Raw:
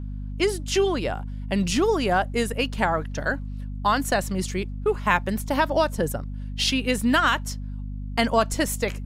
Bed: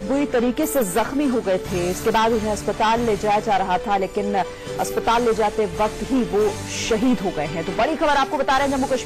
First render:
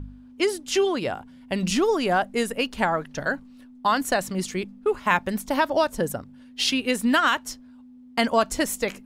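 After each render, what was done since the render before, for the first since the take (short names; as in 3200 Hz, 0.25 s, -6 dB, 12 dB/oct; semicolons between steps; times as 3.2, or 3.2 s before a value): de-hum 50 Hz, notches 4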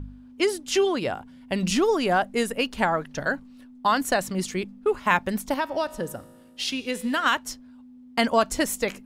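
5.54–7.26 resonator 56 Hz, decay 1.6 s, mix 50%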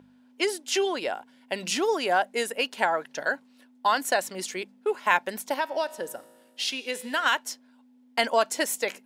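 HPF 450 Hz 12 dB/oct; notch 1200 Hz, Q 6.8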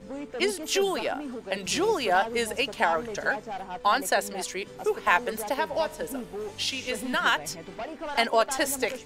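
add bed -16.5 dB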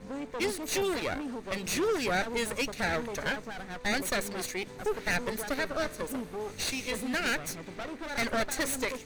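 minimum comb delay 0.47 ms; soft clip -24 dBFS, distortion -9 dB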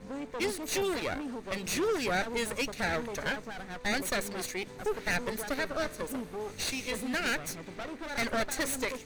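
gain -1 dB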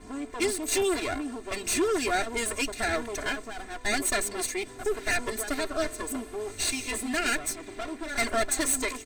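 bell 8200 Hz +12 dB 0.26 oct; comb 2.9 ms, depth 96%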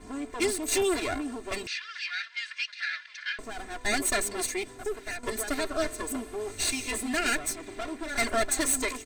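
1.67–3.39 elliptic band-pass 1600–5000 Hz, stop band 80 dB; 4.56–5.23 fade out linear, to -13 dB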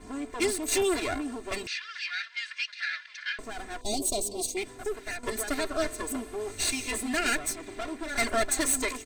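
3.81–4.57 Chebyshev band-stop 700–3800 Hz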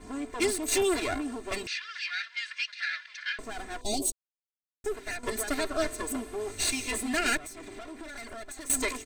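4.12–4.84 mute; 7.37–8.7 compressor 16:1, threshold -38 dBFS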